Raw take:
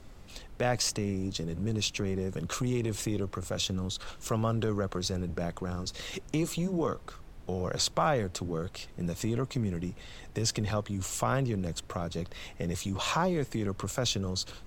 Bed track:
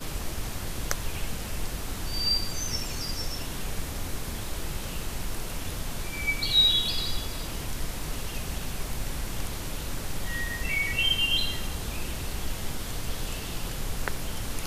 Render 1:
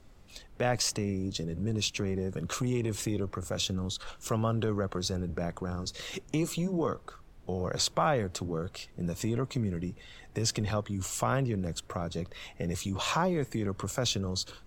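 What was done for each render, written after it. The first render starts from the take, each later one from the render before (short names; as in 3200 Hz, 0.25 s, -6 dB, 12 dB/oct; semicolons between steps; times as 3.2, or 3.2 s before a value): noise print and reduce 6 dB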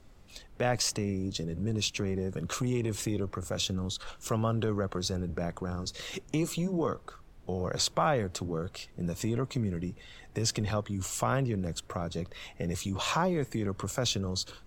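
nothing audible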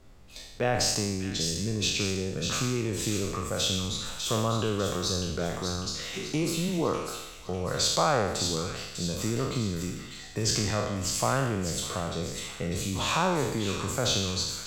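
spectral trails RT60 0.97 s; thin delay 0.599 s, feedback 47%, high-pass 2300 Hz, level -5 dB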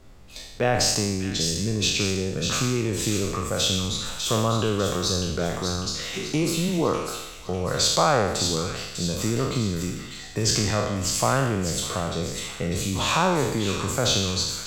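gain +4.5 dB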